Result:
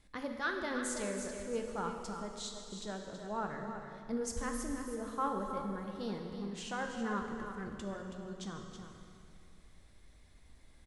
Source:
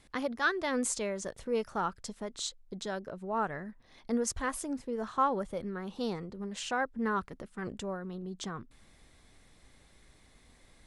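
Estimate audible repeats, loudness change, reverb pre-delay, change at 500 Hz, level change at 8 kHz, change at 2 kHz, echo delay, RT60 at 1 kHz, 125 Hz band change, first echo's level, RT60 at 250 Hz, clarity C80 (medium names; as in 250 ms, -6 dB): 1, -4.5 dB, 3 ms, -4.5 dB, -5.0 dB, -5.0 dB, 325 ms, 2.5 s, -2.0 dB, -9.0 dB, 2.5 s, 3.5 dB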